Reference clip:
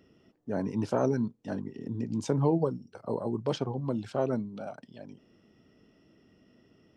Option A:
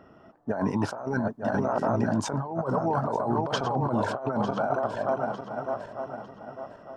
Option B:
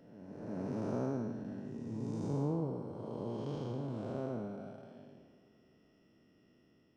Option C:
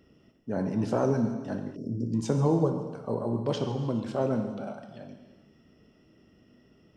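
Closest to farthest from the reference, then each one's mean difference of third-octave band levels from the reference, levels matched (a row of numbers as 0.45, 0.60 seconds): C, B, A; 3.5, 6.5, 9.5 decibels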